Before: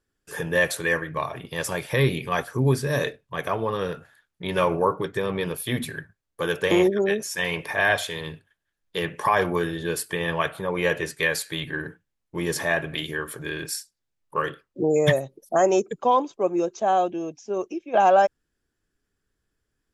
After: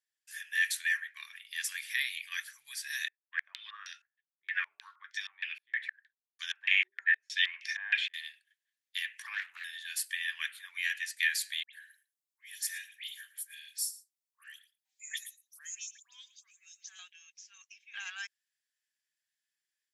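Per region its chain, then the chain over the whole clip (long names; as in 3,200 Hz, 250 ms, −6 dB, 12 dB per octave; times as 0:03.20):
0:03.08–0:08.14: downward expander −46 dBFS + low-pass on a step sequencer 6.4 Hz 370–5,600 Hz
0:09.22–0:09.64: RIAA equalisation playback + highs frequency-modulated by the lows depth 0.36 ms
0:11.63–0:16.99: first difference + all-pass dispersion highs, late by 103 ms, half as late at 2,100 Hz + single-tap delay 113 ms −18 dB
whole clip: elliptic high-pass filter 1,800 Hz, stop band 70 dB; automatic gain control gain up to 3.5 dB; level −6.5 dB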